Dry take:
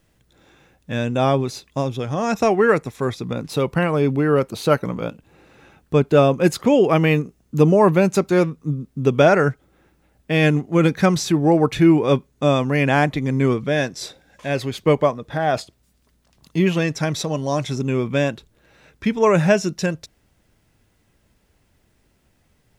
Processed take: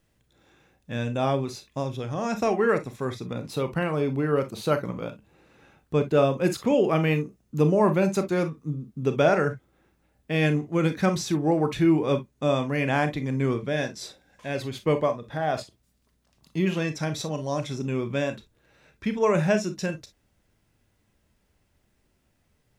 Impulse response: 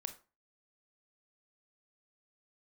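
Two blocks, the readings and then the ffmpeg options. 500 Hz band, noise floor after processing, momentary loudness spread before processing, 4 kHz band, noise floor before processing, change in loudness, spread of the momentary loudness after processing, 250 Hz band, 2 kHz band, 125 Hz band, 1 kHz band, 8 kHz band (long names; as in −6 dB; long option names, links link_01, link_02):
−6.5 dB, −69 dBFS, 11 LU, −6.5 dB, −63 dBFS, −6.5 dB, 12 LU, −6.5 dB, −7.0 dB, −6.5 dB, −6.5 dB, −6.5 dB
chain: -filter_complex "[1:a]atrim=start_sample=2205,atrim=end_sample=3087[link_01];[0:a][link_01]afir=irnorm=-1:irlink=0,volume=-4dB"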